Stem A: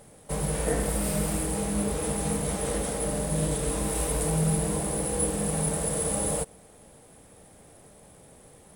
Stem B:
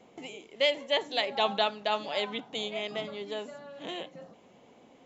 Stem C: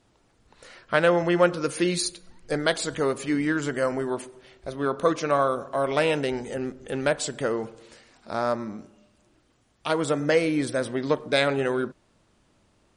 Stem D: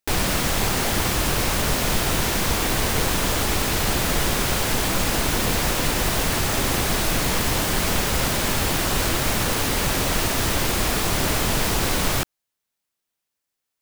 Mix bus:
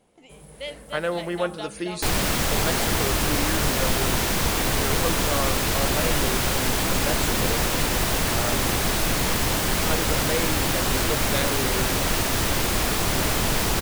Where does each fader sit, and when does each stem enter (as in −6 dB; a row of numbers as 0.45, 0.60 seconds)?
−18.5, −9.0, −6.5, −1.0 decibels; 0.00, 0.00, 0.00, 1.95 seconds